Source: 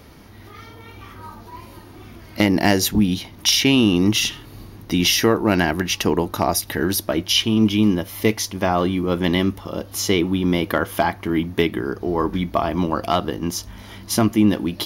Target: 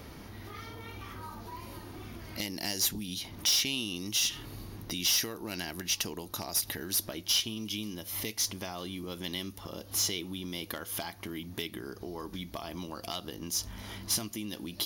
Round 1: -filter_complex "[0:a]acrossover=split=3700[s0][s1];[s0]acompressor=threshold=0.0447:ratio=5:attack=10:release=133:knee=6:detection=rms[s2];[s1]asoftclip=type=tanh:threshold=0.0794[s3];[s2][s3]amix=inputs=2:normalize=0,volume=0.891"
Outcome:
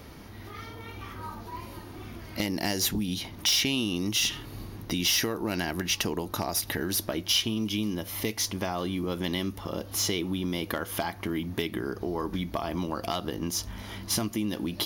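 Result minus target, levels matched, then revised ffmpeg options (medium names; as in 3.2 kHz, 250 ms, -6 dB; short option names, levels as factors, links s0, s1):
compression: peak gain reduction -9 dB
-filter_complex "[0:a]acrossover=split=3700[s0][s1];[s0]acompressor=threshold=0.0119:ratio=5:attack=10:release=133:knee=6:detection=rms[s2];[s1]asoftclip=type=tanh:threshold=0.0794[s3];[s2][s3]amix=inputs=2:normalize=0,volume=0.891"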